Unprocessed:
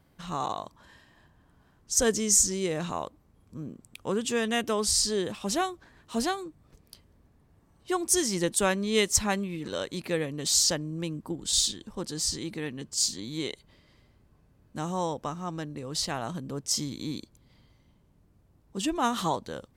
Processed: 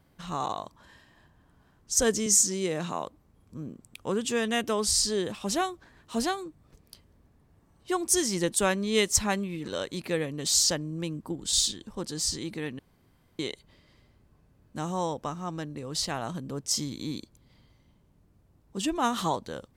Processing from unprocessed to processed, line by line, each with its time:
2.26–3.06 HPF 130 Hz 24 dB/oct
12.79–13.39 room tone

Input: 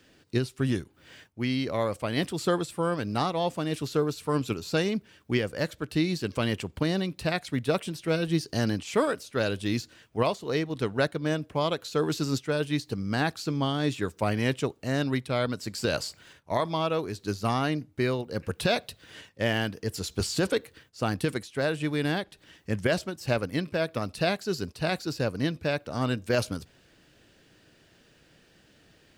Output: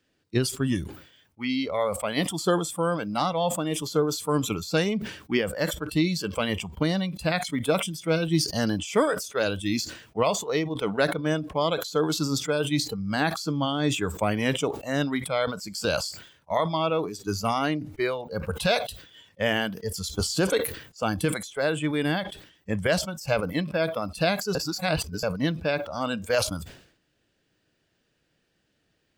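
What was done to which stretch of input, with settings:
24.55–25.23 reverse
whole clip: spectral noise reduction 15 dB; sustainer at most 94 dB/s; gain +2.5 dB

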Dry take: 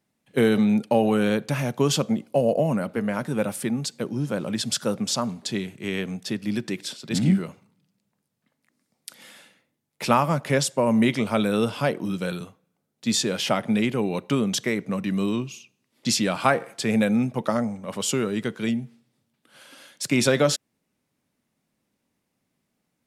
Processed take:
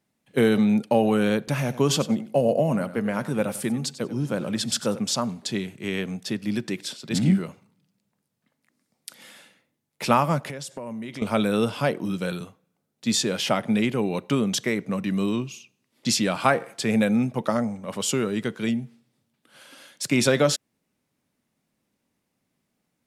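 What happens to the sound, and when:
1.38–4.99 feedback echo 94 ms, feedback 17%, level -14.5 dB
10.48–11.22 compressor 12:1, threshold -31 dBFS

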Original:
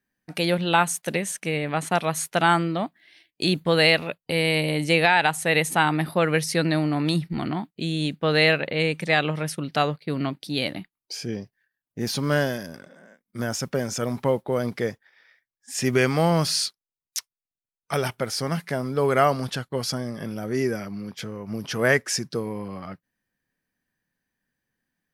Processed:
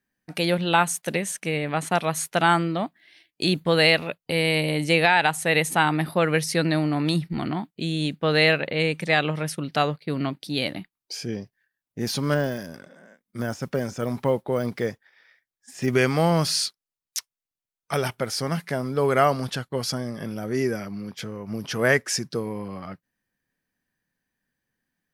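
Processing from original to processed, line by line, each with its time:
12.34–15.88 de-esser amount 90%

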